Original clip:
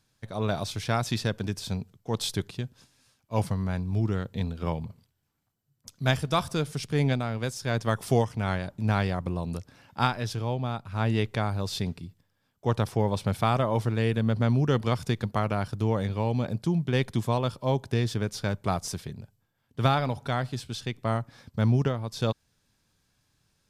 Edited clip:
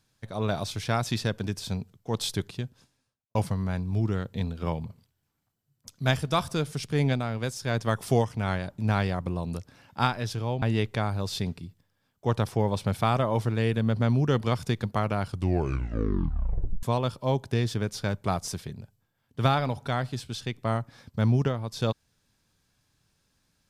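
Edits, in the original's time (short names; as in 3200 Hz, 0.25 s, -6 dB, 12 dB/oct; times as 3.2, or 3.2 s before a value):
2.59–3.35 studio fade out
10.62–11.02 cut
15.6 tape stop 1.63 s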